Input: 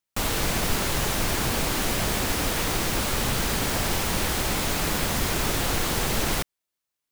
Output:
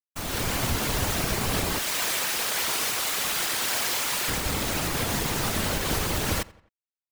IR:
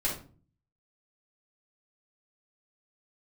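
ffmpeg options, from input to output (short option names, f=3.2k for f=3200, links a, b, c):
-filter_complex "[0:a]asettb=1/sr,asplit=3[a][b][c];[a]atrim=end=1.784[d];[b]atrim=start=1.78:end=4.29,asetpts=PTS-STARTPTS,afade=t=in:d=0.004:c=qsin,afade=t=out:st=2.506:d=0.004:c=qsin,highpass=f=1.3k:p=1[e];[c]atrim=start=4.286[f];[d][e]acrossfade=d=0.004:c1=hsin:c2=qsin[g];[g][f]acrossfade=d=0.004:c1=qsin:c2=hsin,alimiter=limit=-18dB:level=0:latency=1:release=317,dynaudnorm=f=130:g=5:m=8.5dB,acrusher=bits=6:dc=4:mix=0:aa=0.000001,afftfilt=real='hypot(re,im)*cos(2*PI*random(0))':imag='hypot(re,im)*sin(2*PI*random(1))':win_size=512:overlap=0.75,asplit=2[h][i];[i]adelay=87,lowpass=f=3.2k:p=1,volume=-21dB,asplit=2[j][k];[k]adelay=87,lowpass=f=3.2k:p=1,volume=0.48,asplit=2[l][m];[m]adelay=87,lowpass=f=3.2k:p=1,volume=0.48[n];[h][j][l][n]amix=inputs=4:normalize=0"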